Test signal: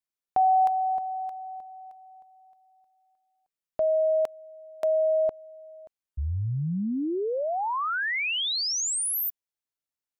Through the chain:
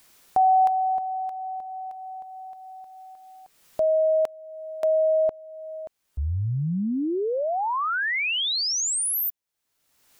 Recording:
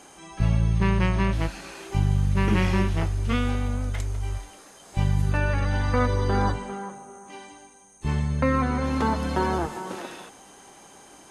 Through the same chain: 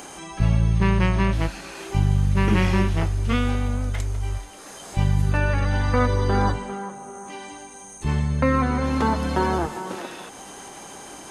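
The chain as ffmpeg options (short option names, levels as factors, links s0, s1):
-af "acompressor=mode=upward:threshold=0.0355:ratio=2.5:attack=0.3:release=516:knee=2.83:detection=peak,volume=1.33"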